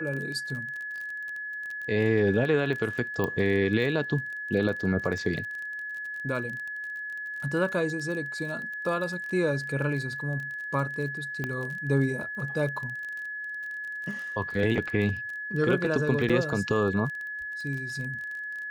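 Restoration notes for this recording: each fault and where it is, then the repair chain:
crackle 30 per s -34 dBFS
whine 1.7 kHz -33 dBFS
3.24 s: pop -16 dBFS
11.44 s: pop -18 dBFS
16.29–16.30 s: dropout 6.1 ms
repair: de-click; band-stop 1.7 kHz, Q 30; interpolate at 16.29 s, 6.1 ms

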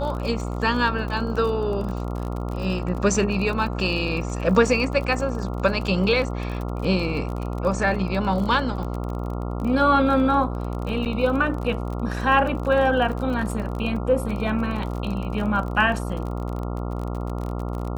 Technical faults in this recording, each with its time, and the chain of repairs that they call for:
buzz 60 Hz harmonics 23 -28 dBFS
crackle 34 per s -29 dBFS
11.05–11.06 s: dropout 8.2 ms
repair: de-click; de-hum 60 Hz, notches 23; interpolate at 11.05 s, 8.2 ms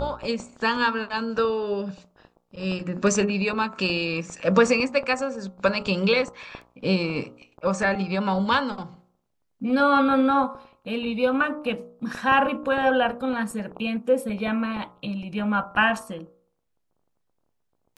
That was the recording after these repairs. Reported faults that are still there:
nothing left

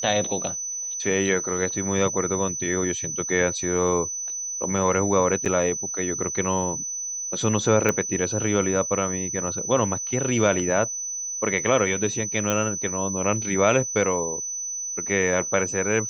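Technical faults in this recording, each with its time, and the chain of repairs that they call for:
whine 6 kHz -28 dBFS
5.45–5.46 s: dropout 7.3 ms
7.89 s: pop -8 dBFS
12.50 s: pop -10 dBFS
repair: de-click; band-stop 6 kHz, Q 30; interpolate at 5.45 s, 7.3 ms

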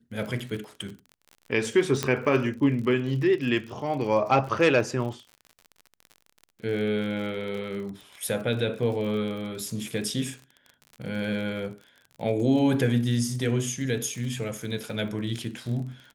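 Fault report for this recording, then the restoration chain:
crackle 43 per s -35 dBFS
2.03 s: pop -10 dBFS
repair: de-click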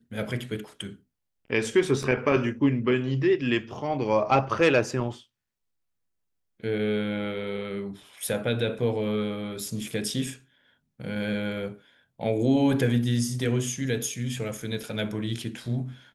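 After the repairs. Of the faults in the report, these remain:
2.03 s: pop

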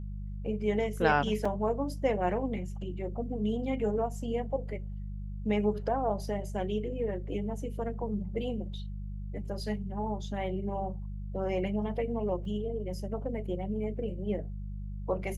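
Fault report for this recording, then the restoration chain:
hum 50 Hz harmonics 4 -38 dBFS
1.45 s: dropout 4.2 ms
12.45 s: dropout 3 ms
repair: de-hum 50 Hz, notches 4; interpolate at 1.45 s, 4.2 ms; interpolate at 12.45 s, 3 ms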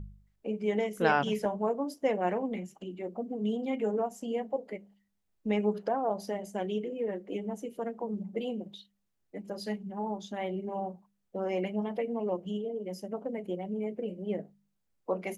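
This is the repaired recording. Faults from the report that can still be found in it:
nothing left

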